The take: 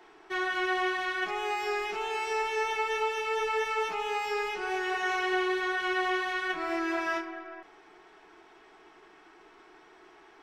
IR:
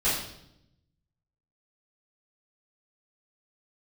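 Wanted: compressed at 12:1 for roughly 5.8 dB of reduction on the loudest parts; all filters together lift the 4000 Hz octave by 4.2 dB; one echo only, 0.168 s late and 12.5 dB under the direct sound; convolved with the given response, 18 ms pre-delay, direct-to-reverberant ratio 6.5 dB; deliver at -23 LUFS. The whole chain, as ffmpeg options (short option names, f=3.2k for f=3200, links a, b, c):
-filter_complex "[0:a]equalizer=f=4k:t=o:g=6,acompressor=threshold=-30dB:ratio=12,aecho=1:1:168:0.237,asplit=2[a][b];[1:a]atrim=start_sample=2205,adelay=18[c];[b][c]afir=irnorm=-1:irlink=0,volume=-18.5dB[d];[a][d]amix=inputs=2:normalize=0,volume=9.5dB"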